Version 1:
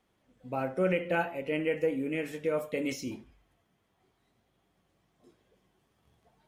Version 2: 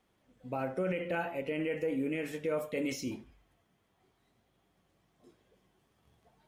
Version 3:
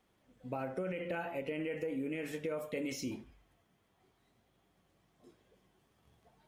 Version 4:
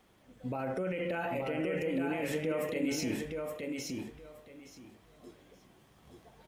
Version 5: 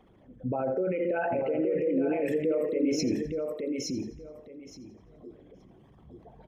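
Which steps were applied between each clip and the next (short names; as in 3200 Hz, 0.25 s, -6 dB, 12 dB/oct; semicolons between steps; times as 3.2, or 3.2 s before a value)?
limiter -24 dBFS, peak gain reduction 7.5 dB
compressor, threshold -34 dBFS, peak gain reduction 6 dB
limiter -35 dBFS, peak gain reduction 9.5 dB; on a send: feedback echo 0.871 s, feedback 19%, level -4 dB; on the sum: gain +8.5 dB
formant sharpening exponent 2; thinning echo 85 ms, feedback 48%, level -16 dB; gain +6 dB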